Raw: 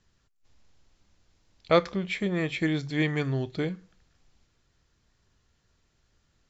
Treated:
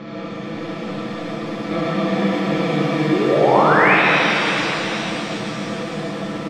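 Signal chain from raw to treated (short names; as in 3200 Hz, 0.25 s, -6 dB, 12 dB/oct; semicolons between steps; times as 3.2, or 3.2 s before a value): per-bin compression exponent 0.2; steep low-pass 6100 Hz; bell 230 Hz +13 dB 0.6 oct; comb 6 ms; painted sound rise, 3.12–3.95, 330–2700 Hz -8 dBFS; on a send: echo 0.112 s -5.5 dB; on the sum: shimmer reverb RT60 3.8 s, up +7 st, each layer -8 dB, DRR -7 dB; gain -14.5 dB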